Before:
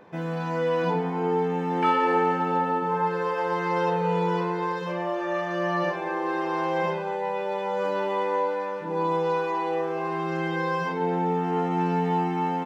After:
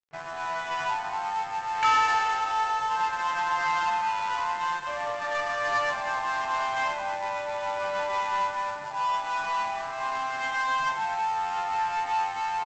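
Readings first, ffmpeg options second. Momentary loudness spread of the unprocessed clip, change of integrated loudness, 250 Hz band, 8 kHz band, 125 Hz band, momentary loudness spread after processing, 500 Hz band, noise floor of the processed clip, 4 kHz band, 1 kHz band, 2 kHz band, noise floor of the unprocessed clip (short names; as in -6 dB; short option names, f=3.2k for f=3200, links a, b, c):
5 LU, -1.5 dB, -23.5 dB, n/a, -21.5 dB, 6 LU, -10.5 dB, -35 dBFS, +5.5 dB, +1.0 dB, +3.5 dB, -30 dBFS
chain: -filter_complex "[0:a]afftfilt=real='re*(1-between(b*sr/4096,160,540))':imag='im*(1-between(b*sr/4096,160,540))':win_size=4096:overlap=0.75,acrossover=split=490|1100[a][b][c];[a]acompressor=threshold=-50dB:ratio=16[d];[b]asoftclip=type=tanh:threshold=-36dB[e];[d][e][c]amix=inputs=3:normalize=0,adynamicsmooth=sensitivity=7.5:basefreq=1k,aresample=16000,aeval=exprs='sgn(val(0))*max(abs(val(0))-0.00447,0)':c=same,aresample=44100,aecho=1:1:228:0.224,volume=6.5dB" -ar 24000 -c:a libmp3lame -b:a 56k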